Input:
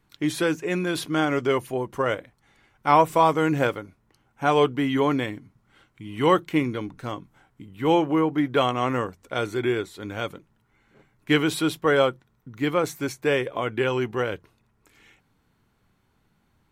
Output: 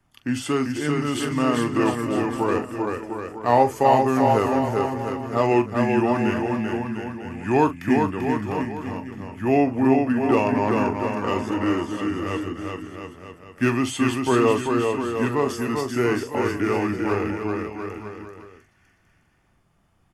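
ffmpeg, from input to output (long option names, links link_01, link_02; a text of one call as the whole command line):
ffmpeg -i in.wav -filter_complex "[0:a]bandreject=frequency=4600:width=7.3,asetrate=36603,aresample=44100,acrossover=split=130|1300|2500[link_01][link_02][link_03][link_04];[link_03]volume=32.5dB,asoftclip=hard,volume=-32.5dB[link_05];[link_01][link_02][link_05][link_04]amix=inputs=4:normalize=0,asplit=2[link_06][link_07];[link_07]adelay=42,volume=-12dB[link_08];[link_06][link_08]amix=inputs=2:normalize=0,aecho=1:1:390|702|951.6|1151|1311:0.631|0.398|0.251|0.158|0.1" out.wav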